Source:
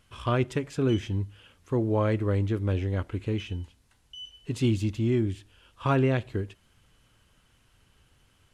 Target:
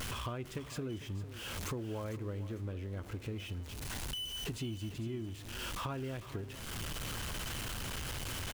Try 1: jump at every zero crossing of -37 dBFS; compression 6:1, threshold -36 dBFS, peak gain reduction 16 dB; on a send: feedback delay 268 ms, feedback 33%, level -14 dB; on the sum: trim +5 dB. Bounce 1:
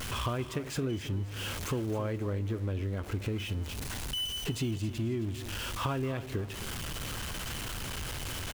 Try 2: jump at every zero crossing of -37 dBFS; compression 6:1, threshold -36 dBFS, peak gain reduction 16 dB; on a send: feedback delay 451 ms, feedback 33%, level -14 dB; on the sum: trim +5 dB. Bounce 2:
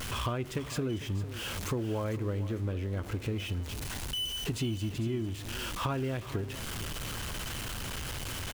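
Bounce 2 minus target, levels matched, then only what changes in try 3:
compression: peak gain reduction -7 dB
change: compression 6:1, threshold -44.5 dBFS, peak gain reduction 23 dB

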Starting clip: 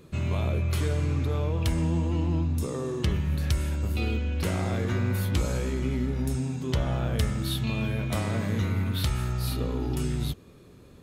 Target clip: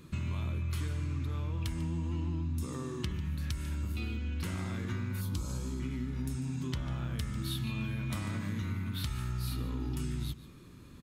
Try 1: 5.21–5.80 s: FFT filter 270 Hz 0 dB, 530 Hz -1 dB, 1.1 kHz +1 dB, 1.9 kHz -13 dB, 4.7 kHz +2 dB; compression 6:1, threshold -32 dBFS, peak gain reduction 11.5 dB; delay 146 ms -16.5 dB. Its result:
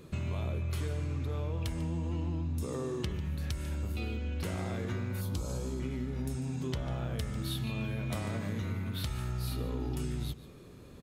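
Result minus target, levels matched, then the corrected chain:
500 Hz band +6.5 dB
5.21–5.80 s: FFT filter 270 Hz 0 dB, 530 Hz -1 dB, 1.1 kHz +1 dB, 1.9 kHz -13 dB, 4.7 kHz +2 dB; compression 6:1, threshold -32 dBFS, peak gain reduction 11.5 dB; high-order bell 560 Hz -9.5 dB 1.2 oct; delay 146 ms -16.5 dB

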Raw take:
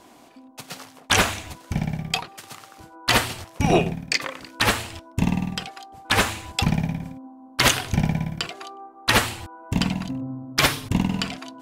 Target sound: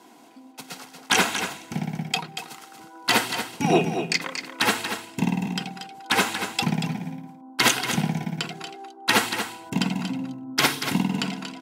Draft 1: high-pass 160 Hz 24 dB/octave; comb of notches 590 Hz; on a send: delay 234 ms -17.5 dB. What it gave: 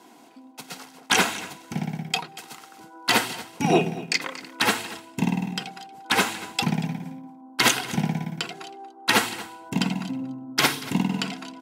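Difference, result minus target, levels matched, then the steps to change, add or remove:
echo-to-direct -9 dB
change: delay 234 ms -8.5 dB

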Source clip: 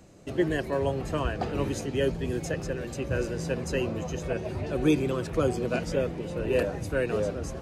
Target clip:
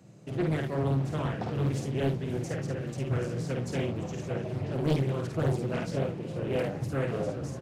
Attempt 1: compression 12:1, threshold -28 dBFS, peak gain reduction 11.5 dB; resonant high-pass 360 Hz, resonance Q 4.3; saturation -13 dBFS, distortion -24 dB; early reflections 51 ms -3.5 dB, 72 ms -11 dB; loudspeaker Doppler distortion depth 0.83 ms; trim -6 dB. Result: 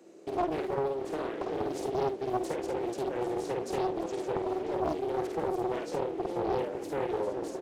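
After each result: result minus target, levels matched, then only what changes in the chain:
125 Hz band -15.0 dB; compression: peak gain reduction +11.5 dB
change: resonant high-pass 130 Hz, resonance Q 4.3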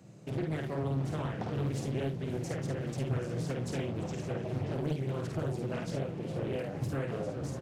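compression: peak gain reduction +11.5 dB
remove: compression 12:1, threshold -28 dBFS, peak gain reduction 11.5 dB

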